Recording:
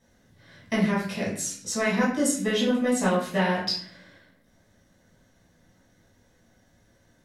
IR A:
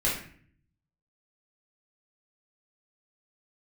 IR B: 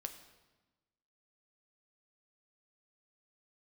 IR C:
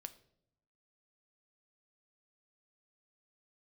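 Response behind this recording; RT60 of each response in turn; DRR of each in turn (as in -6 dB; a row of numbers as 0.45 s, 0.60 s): A; 0.50 s, 1.2 s, 0.75 s; -7.0 dB, 6.0 dB, 9.5 dB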